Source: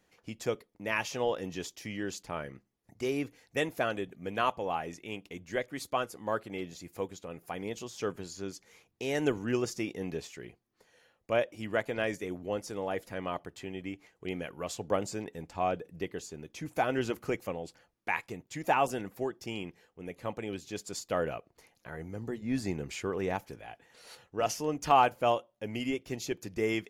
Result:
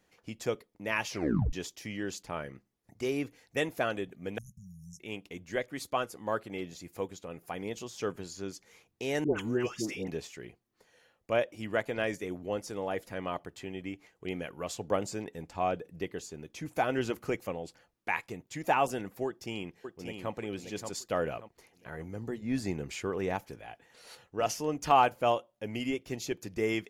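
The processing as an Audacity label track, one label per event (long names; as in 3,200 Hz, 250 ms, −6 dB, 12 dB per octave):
1.090000	1.090000	tape stop 0.44 s
4.380000	5.000000	linear-phase brick-wall band-stop 210–5,200 Hz
9.240000	10.080000	all-pass dispersion highs, late by 126 ms, half as late at 1,000 Hz
19.260000	20.320000	delay throw 580 ms, feedback 35%, level −6 dB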